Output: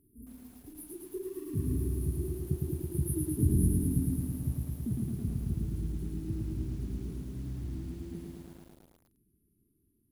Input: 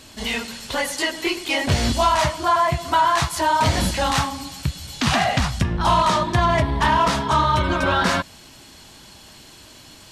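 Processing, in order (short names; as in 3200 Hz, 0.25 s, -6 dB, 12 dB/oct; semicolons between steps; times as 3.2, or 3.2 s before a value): Doppler pass-by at 3.23, 30 m/s, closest 26 m; brick-wall FIR band-stop 440–9400 Hz; lo-fi delay 0.109 s, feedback 80%, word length 9-bit, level -3 dB; gain -5 dB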